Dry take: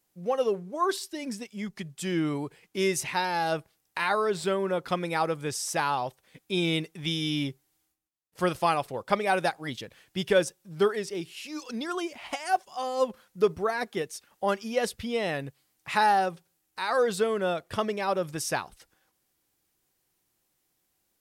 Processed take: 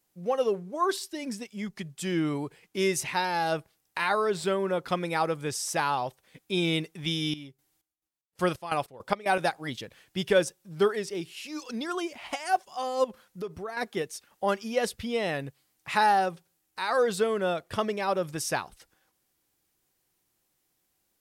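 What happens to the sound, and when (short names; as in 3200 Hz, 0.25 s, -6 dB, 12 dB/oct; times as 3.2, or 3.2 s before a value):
7.05–9.38 chopper 1.7 Hz -> 4.3 Hz
13.04–13.77 compressor 2.5:1, threshold -37 dBFS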